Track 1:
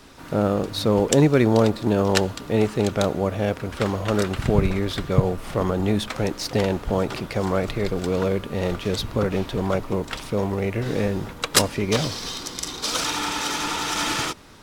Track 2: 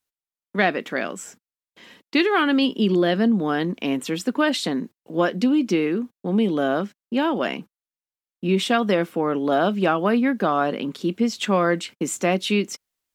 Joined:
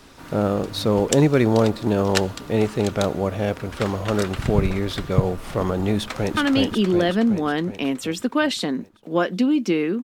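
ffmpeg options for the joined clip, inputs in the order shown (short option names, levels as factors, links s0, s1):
-filter_complex "[0:a]apad=whole_dur=10.03,atrim=end=10.03,atrim=end=6.372[s0];[1:a]atrim=start=2.398:end=6.06[s1];[s0][s1]acrossfade=d=0.004:c1=hsin:c2=hsin,asplit=2[s2][s3];[s3]afade=t=in:st=5.97:d=0.01,afade=t=out:st=6.37:d=0.01,aecho=0:1:370|740|1110|1480|1850|2220|2590|2960|3330:0.841395|0.504837|0.302902|0.181741|0.109045|0.0654269|0.0392561|0.0235537|0.0141322[s4];[s2][s4]amix=inputs=2:normalize=0"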